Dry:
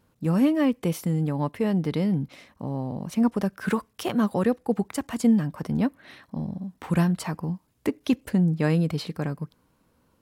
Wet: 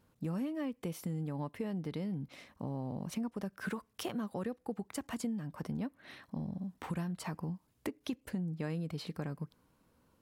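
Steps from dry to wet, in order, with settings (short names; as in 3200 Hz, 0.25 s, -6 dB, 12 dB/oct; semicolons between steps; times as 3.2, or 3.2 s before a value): compressor 5:1, threshold -31 dBFS, peak gain reduction 14 dB; gain -4.5 dB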